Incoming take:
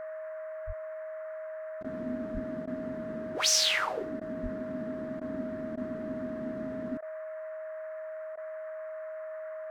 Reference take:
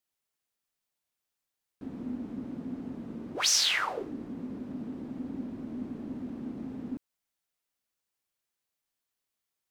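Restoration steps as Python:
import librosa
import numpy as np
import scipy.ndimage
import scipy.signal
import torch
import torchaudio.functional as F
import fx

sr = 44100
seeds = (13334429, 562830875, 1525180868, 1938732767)

y = fx.notch(x, sr, hz=630.0, q=30.0)
y = fx.fix_deplosive(y, sr, at_s=(0.66, 2.33, 4.42))
y = fx.fix_interpolate(y, sr, at_s=(1.83, 2.66, 4.2, 5.2, 5.76, 7.01, 8.36), length_ms=12.0)
y = fx.noise_reduce(y, sr, print_start_s=7.88, print_end_s=8.38, reduce_db=30.0)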